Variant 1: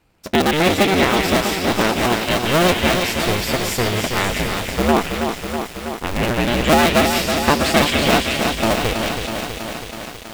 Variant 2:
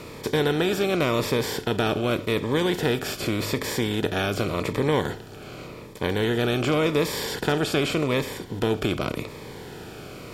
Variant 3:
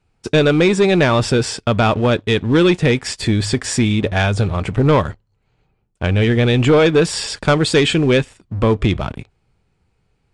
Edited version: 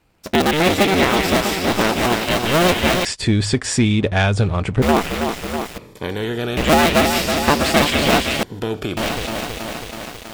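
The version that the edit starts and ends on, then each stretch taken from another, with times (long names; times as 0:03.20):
1
0:03.05–0:04.82: punch in from 3
0:05.78–0:06.57: punch in from 2
0:08.43–0:08.97: punch in from 2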